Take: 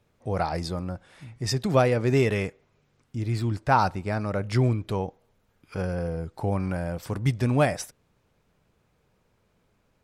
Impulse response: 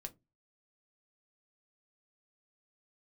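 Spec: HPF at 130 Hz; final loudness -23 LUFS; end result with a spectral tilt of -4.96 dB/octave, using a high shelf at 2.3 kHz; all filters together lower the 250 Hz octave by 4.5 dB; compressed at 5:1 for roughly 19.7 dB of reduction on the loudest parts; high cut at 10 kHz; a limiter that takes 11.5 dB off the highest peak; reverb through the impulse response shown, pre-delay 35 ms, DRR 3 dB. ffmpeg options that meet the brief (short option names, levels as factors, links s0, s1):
-filter_complex "[0:a]highpass=130,lowpass=10000,equalizer=f=250:t=o:g=-5.5,highshelf=f=2300:g=8,acompressor=threshold=0.0126:ratio=5,alimiter=level_in=3.16:limit=0.0631:level=0:latency=1,volume=0.316,asplit=2[s0][s1];[1:a]atrim=start_sample=2205,adelay=35[s2];[s1][s2]afir=irnorm=-1:irlink=0,volume=1.19[s3];[s0][s3]amix=inputs=2:normalize=0,volume=10.6"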